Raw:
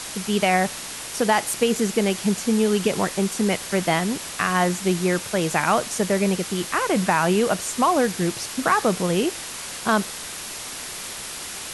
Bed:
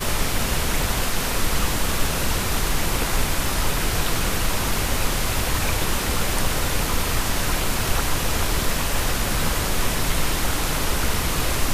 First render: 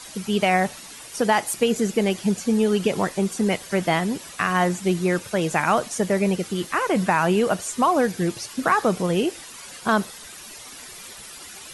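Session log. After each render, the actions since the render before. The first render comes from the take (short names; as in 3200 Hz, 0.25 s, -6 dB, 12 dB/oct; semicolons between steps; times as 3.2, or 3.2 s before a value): denoiser 11 dB, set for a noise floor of -34 dBFS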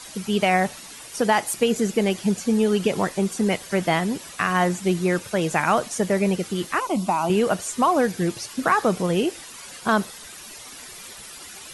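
6.8–7.3 fixed phaser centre 460 Hz, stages 6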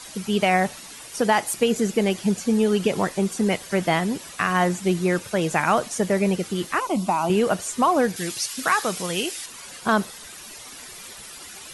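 8.16–9.46 tilt shelf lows -8 dB, about 1400 Hz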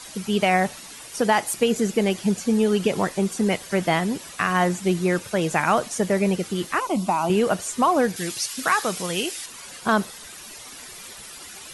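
nothing audible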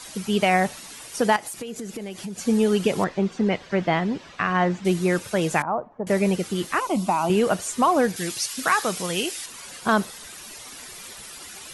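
1.36–2.39 compressor 8:1, threshold -30 dBFS; 3.04–4.85 air absorption 180 m; 5.62–6.07 ladder low-pass 1100 Hz, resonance 40%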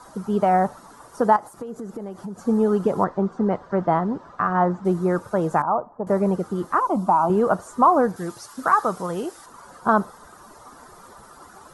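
resonant high shelf 1700 Hz -13.5 dB, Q 3; notch 1100 Hz, Q 17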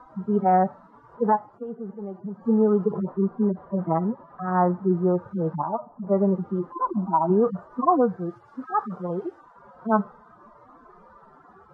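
median-filter separation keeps harmonic; LPF 1400 Hz 12 dB/oct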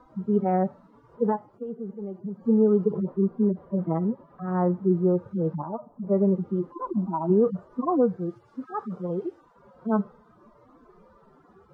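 band shelf 1100 Hz -8.5 dB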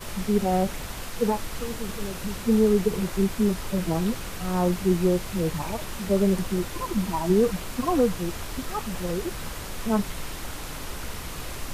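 add bed -12.5 dB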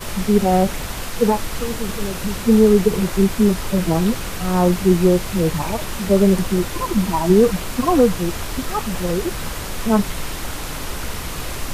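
gain +7.5 dB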